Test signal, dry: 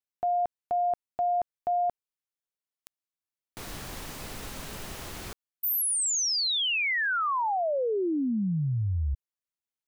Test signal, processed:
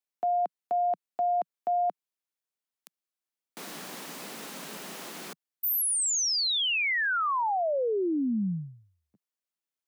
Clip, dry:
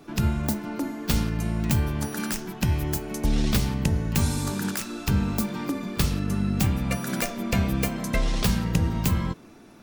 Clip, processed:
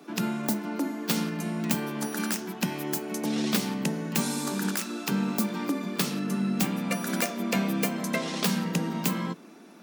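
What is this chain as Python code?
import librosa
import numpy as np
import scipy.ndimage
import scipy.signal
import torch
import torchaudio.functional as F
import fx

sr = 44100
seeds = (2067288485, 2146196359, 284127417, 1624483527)

y = scipy.signal.sosfilt(scipy.signal.butter(8, 170.0, 'highpass', fs=sr, output='sos'), x)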